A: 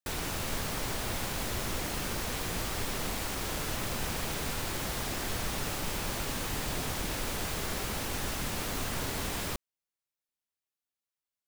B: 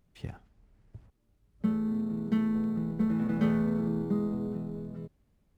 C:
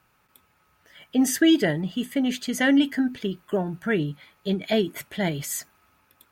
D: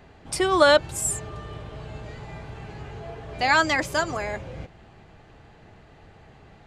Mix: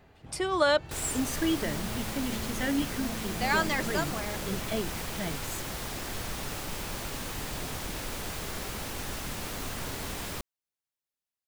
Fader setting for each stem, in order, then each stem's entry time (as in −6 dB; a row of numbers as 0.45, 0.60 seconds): −2.0, −12.5, −10.5, −7.5 decibels; 0.85, 0.00, 0.00, 0.00 seconds